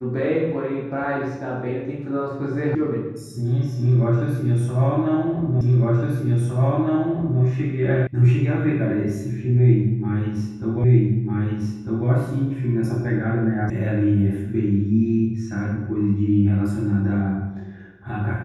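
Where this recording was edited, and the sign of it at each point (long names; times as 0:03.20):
0:02.75: cut off before it has died away
0:05.61: the same again, the last 1.81 s
0:08.07: cut off before it has died away
0:10.84: the same again, the last 1.25 s
0:13.70: cut off before it has died away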